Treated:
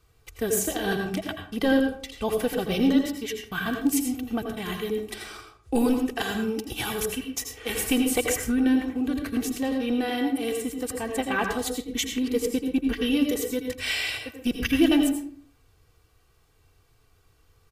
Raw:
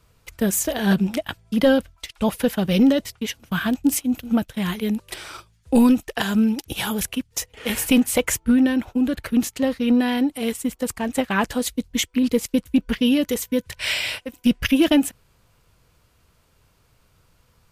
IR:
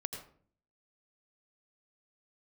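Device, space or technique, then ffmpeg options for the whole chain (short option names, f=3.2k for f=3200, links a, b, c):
microphone above a desk: -filter_complex "[0:a]aecho=1:1:2.6:0.6[a];[1:a]atrim=start_sample=2205[b];[a][b]afir=irnorm=-1:irlink=0,volume=-4.5dB"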